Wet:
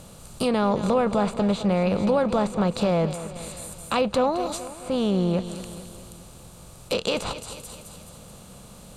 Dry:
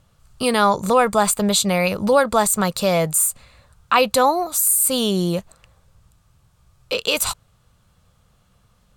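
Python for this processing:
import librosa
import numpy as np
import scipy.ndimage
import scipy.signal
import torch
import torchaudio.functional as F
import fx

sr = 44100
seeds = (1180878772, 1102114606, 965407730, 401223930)

p1 = fx.bin_compress(x, sr, power=0.6)
p2 = scipy.signal.sosfilt(scipy.signal.butter(2, 12000.0, 'lowpass', fs=sr, output='sos'), p1)
p3 = fx.peak_eq(p2, sr, hz=1500.0, db=-12.0, octaves=2.6)
p4 = p3 + fx.echo_feedback(p3, sr, ms=215, feedback_pct=54, wet_db=-13, dry=0)
p5 = fx.env_lowpass_down(p4, sr, base_hz=2100.0, full_db=-15.0)
y = p5 * librosa.db_to_amplitude(-2.0)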